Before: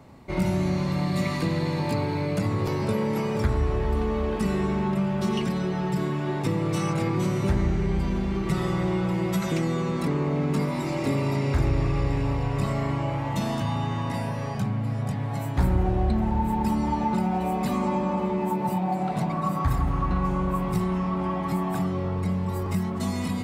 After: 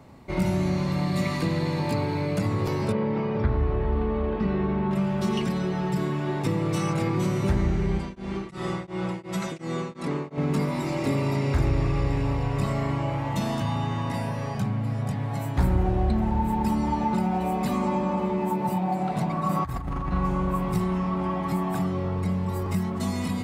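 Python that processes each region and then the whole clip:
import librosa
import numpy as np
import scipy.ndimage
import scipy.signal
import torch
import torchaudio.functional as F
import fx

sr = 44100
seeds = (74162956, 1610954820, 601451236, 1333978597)

y = fx.chain(x, sr, fx.lowpass(hz=4500.0, slope=24),
    fx.high_shelf(hz=3200.0, db=-12.0), at=(2.92, 4.91))
y = fx.chain(y, sr, fx.steep_lowpass(hz=11000.0, slope=48),
    fx.low_shelf(hz=110.0, db=-12.0),
    fx.tremolo_abs(hz=2.8), at=(7.98, 10.38))
y = fx.chain(y, sr, fx.hum_notches(base_hz=50, count=9),
    fx.over_compress(threshold_db=-27.0, ratio=-0.5), at=(19.49, 20.13))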